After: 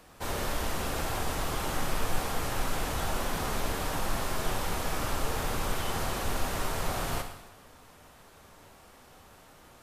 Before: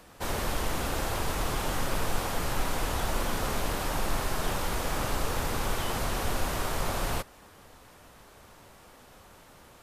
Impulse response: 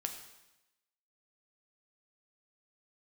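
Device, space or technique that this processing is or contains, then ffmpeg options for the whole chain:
bathroom: -filter_complex "[1:a]atrim=start_sample=2205[a];[0:a][a]afir=irnorm=-1:irlink=0,volume=-1dB"

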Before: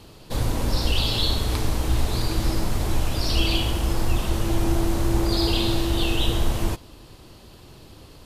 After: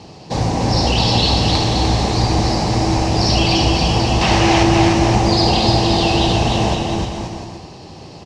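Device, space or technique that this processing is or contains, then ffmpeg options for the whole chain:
car door speaker: -filter_complex "[0:a]asettb=1/sr,asplit=3[a][b][c];[a]atrim=end=4.214[d];[b]atrim=start=4.21:end=4.63,asetpts=PTS-STARTPTS,afade=t=in:d=0.004:c=qsin,afade=t=out:st=0.416:d=0.004:c=qsin,equalizer=f=2.3k:w=0.48:g=13.5[e];[c]atrim=start=4.626[f];[d][e]acrossfade=d=0.004:c1=hsin:c2=qsin[g];[g][f]acrossfade=d=0.004:c1=qsin:c2=hsin,highpass=85,equalizer=f=170:t=q:w=4:g=6,equalizer=f=780:t=q:w=4:g=9,equalizer=f=1.4k:t=q:w=4:g=-8,equalizer=f=3.4k:t=q:w=4:g=-6,equalizer=f=5.5k:t=q:w=4:g=5,lowpass=f=6.7k:w=0.5412,lowpass=f=6.7k:w=1.3066,aecho=1:1:300|525|693.8|820.3|915.2:0.631|0.398|0.251|0.158|0.1,volume=8dB"

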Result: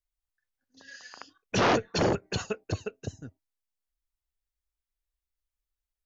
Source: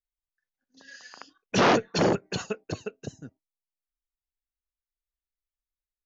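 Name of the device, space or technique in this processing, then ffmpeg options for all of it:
car stereo with a boomy subwoofer: -af "lowshelf=f=120:t=q:w=1.5:g=7,alimiter=limit=-17.5dB:level=0:latency=1:release=185"

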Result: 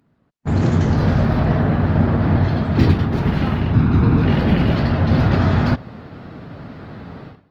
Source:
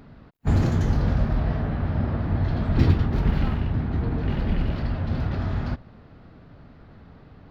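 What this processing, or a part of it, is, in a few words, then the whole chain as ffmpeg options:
video call: -filter_complex "[0:a]asettb=1/sr,asplit=3[a][b][c];[a]atrim=end=3.754[d];[b]atrim=start=3.75:end=4.25,asetpts=PTS-STARTPTS,afade=t=in:d=0.004:c=qsin,afade=t=out:st=0.496:d=0.004:c=qsin,aecho=1:1:0.8:0.48,atrim=end_sample=22050[e];[c]atrim=start=4.246[f];[d][e]acrossfade=d=0.004:c1=hsin:c2=qsin[g];[g][f]acrossfade=d=0.004:c1=qsin:c2=hsin,highpass=100,dynaudnorm=f=380:g=3:m=16.5dB,agate=range=-12dB:threshold=-36dB:ratio=16:detection=peak,volume=-1dB" -ar 48000 -c:a libopus -b:a 24k

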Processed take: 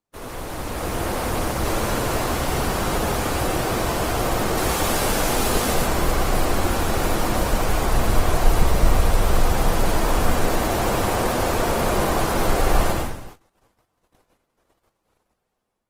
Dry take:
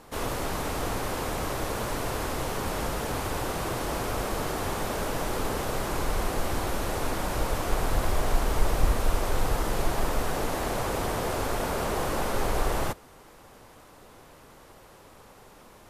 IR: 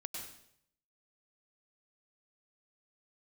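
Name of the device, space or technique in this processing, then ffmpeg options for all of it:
speakerphone in a meeting room: -filter_complex "[0:a]asettb=1/sr,asplit=3[a][b][c];[a]atrim=end=4.574[d];[b]atrim=start=4.57:end=5.74,asetpts=PTS-STARTPTS,afade=t=in:d=0.004:c=qsin,afade=t=out:st=1.166:d=0.004:c=qsin,highshelf=f=2.5k:g=6[e];[c]atrim=start=5.736[f];[d][e]acrossfade=d=0.004:c1=hsin:c2=qsin[g];[g][f]acrossfade=d=0.004:c1=qsin:c2=hsin[h];[1:a]atrim=start_sample=2205[i];[h][i]afir=irnorm=-1:irlink=0,dynaudnorm=f=330:g=5:m=9dB,agate=range=-31dB:threshold=-39dB:ratio=16:detection=peak" -ar 48000 -c:a libopus -b:a 20k

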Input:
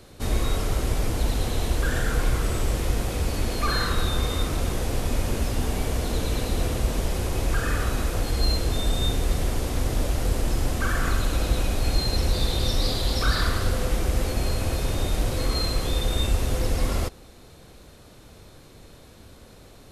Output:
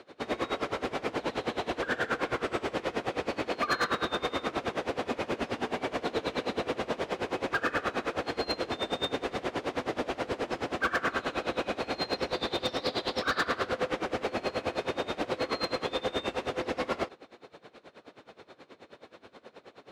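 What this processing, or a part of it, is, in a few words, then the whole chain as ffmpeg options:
helicopter radio: -af "highpass=330,lowpass=2.8k,aeval=exprs='val(0)*pow(10,-21*(0.5-0.5*cos(2*PI*9.4*n/s))/20)':c=same,asoftclip=type=hard:threshold=-28.5dB,volume=7dB"

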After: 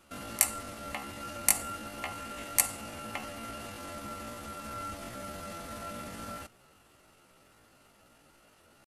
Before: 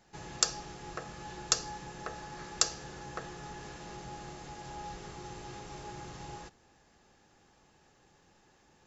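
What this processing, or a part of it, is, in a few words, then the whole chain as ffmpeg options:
chipmunk voice: -af "asetrate=72056,aresample=44100,atempo=0.612027,volume=3.5dB"

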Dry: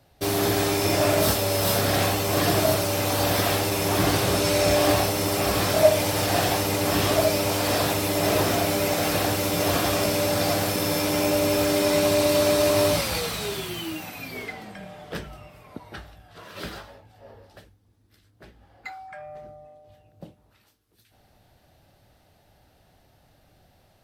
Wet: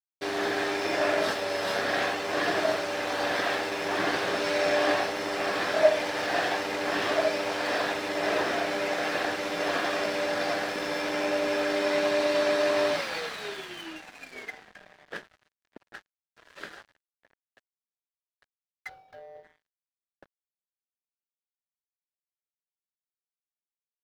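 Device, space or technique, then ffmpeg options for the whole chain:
pocket radio on a weak battery: -filter_complex "[0:a]highpass=320,lowpass=4.2k,aeval=exprs='sgn(val(0))*max(abs(val(0))-0.00794,0)':c=same,equalizer=f=1.7k:t=o:w=0.43:g=8,asplit=3[a][b][c];[a]afade=t=out:st=18.88:d=0.02[d];[b]equalizer=f=125:t=o:w=1:g=8,equalizer=f=250:t=o:w=1:g=-7,equalizer=f=500:t=o:w=1:g=12,equalizer=f=1k:t=o:w=1:g=-4,equalizer=f=2k:t=o:w=1:g=-12,equalizer=f=8k:t=o:w=1:g=-12,afade=t=in:st=18.88:d=0.02,afade=t=out:st=19.43:d=0.02[e];[c]afade=t=in:st=19.43:d=0.02[f];[d][e][f]amix=inputs=3:normalize=0,volume=-3dB"

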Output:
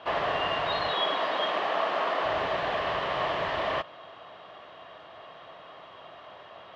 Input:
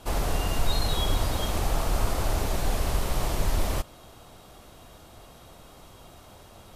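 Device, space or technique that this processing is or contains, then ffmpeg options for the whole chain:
kitchen radio: -filter_complex "[0:a]asettb=1/sr,asplit=3[a][b][c];[a]atrim=end=0.914[d];[b]atrim=start=0.91:end=2.24,asetpts=PTS-STARTPTS,afade=t=in:d=0.004:c=qsin,afade=t=out:st=1.326:d=0.004:c=qsin,highpass=f=200:w=0.5412,highpass=f=200:w=1.3066[e];[c]atrim=start=2.236[f];[d][e]acrossfade=d=0.004:c1=hsin:c2=qsin[g];[g][f]acrossfade=d=0.004:c1=qsin:c2=hsin,highpass=220,equalizer=f=230:t=q:w=4:g=-9,equalizer=f=330:t=q:w=4:g=-3,equalizer=f=640:t=q:w=4:g=8,equalizer=f=1.1k:t=q:w=4:g=9,equalizer=f=1.8k:t=q:w=4:g=10,equalizer=f=3k:t=q:w=4:g=7,lowpass=f=3.7k:w=0.5412,lowpass=f=3.7k:w=1.3066"

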